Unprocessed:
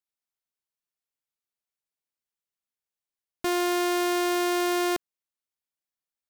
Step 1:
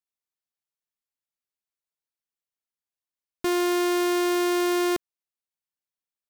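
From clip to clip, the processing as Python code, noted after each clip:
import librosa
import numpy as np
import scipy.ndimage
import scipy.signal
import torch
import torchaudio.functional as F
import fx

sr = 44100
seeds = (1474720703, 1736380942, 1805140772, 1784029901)

y = fx.leveller(x, sr, passes=2)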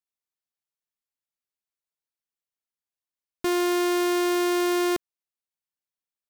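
y = x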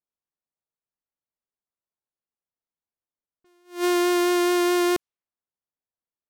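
y = fx.env_lowpass(x, sr, base_hz=1100.0, full_db=-23.5)
y = fx.vibrato(y, sr, rate_hz=4.7, depth_cents=13.0)
y = fx.attack_slew(y, sr, db_per_s=200.0)
y = y * 10.0 ** (2.5 / 20.0)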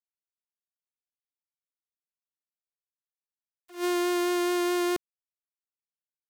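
y = fx.quant_dither(x, sr, seeds[0], bits=8, dither='none')
y = y * 10.0 ** (-5.5 / 20.0)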